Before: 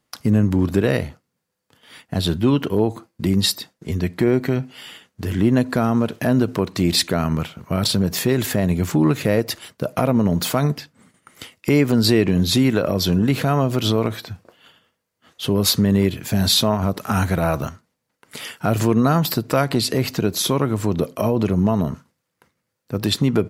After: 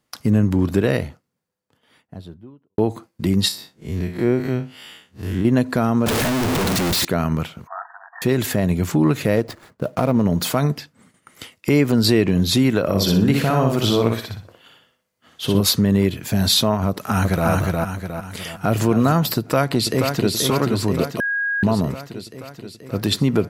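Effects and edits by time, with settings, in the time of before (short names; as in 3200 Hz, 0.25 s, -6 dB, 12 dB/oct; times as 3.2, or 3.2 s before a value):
0.78–2.78 studio fade out
3.48–5.45 time blur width 90 ms
6.06–7.05 infinite clipping
7.67–8.22 brick-wall FIR band-pass 670–1900 Hz
9.36–10.25 median filter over 15 samples
12.83–15.61 feedback echo 61 ms, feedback 29%, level -3.5 dB
16.88–17.48 echo throw 0.36 s, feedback 45%, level -2 dB
18.45–18.85 echo throw 0.27 s, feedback 30%, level -10.5 dB
19.38–20.32 echo throw 0.48 s, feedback 70%, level -5 dB
21.2–21.63 bleep 1640 Hz -19 dBFS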